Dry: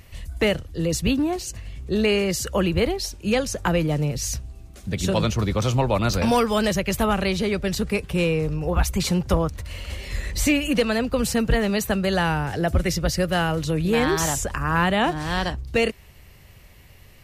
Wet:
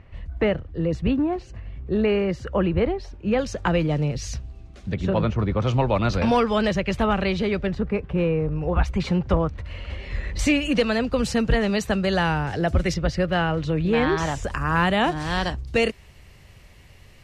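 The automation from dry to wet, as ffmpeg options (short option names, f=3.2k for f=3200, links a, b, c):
-af "asetnsamples=n=441:p=0,asendcmd='3.39 lowpass f 4200;4.94 lowpass f 1900;5.67 lowpass f 3600;7.67 lowpass f 1600;8.56 lowpass f 2700;10.39 lowpass f 6000;12.94 lowpass f 3200;14.44 lowpass f 8700',lowpass=1.8k"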